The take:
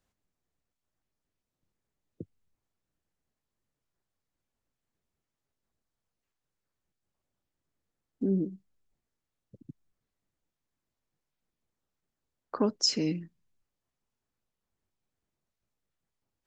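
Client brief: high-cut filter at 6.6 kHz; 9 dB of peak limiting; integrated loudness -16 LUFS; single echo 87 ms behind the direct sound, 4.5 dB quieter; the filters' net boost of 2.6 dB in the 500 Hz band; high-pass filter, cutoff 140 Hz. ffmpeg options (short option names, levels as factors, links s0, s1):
-af "highpass=140,lowpass=6600,equalizer=f=500:t=o:g=3.5,alimiter=limit=0.0668:level=0:latency=1,aecho=1:1:87:0.596,volume=7.08"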